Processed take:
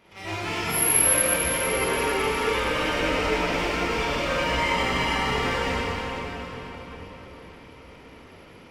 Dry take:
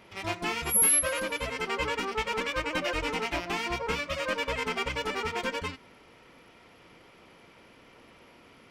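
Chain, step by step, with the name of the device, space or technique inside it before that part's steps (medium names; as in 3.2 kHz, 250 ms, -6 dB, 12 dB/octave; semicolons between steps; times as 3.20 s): 4.33–5.21 s: comb 1 ms, depth 72%; cathedral (reverberation RT60 4.9 s, pre-delay 23 ms, DRR -10.5 dB); trim -5 dB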